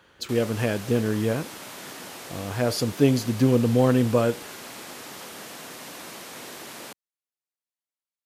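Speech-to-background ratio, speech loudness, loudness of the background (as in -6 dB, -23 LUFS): 15.0 dB, -23.5 LUFS, -38.5 LUFS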